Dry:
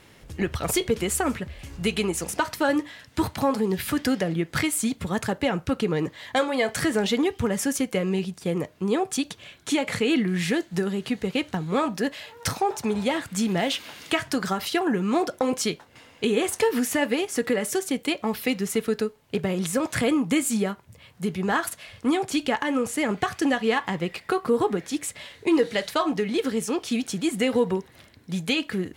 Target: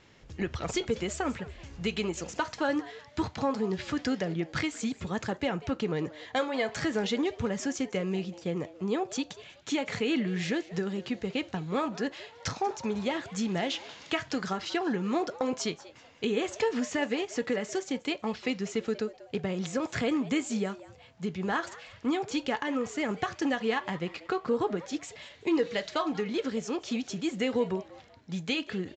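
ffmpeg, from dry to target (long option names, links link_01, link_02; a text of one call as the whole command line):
ffmpeg -i in.wav -filter_complex "[0:a]asplit=4[link_01][link_02][link_03][link_04];[link_02]adelay=189,afreqshift=150,volume=-18.5dB[link_05];[link_03]adelay=378,afreqshift=300,volume=-29dB[link_06];[link_04]adelay=567,afreqshift=450,volume=-39.4dB[link_07];[link_01][link_05][link_06][link_07]amix=inputs=4:normalize=0,aresample=16000,aresample=44100,volume=-6dB" out.wav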